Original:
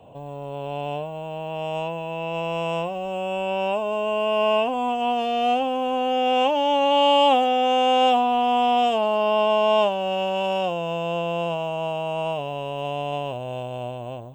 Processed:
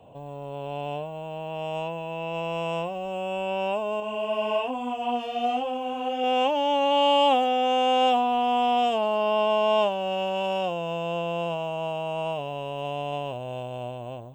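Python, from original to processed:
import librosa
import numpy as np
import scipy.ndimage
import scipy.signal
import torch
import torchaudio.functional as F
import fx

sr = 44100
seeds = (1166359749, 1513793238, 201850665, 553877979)

y = fx.chorus_voices(x, sr, voices=4, hz=1.2, base_ms=22, depth_ms=3.0, mix_pct=45, at=(4.0, 6.24))
y = y * 10.0 ** (-3.0 / 20.0)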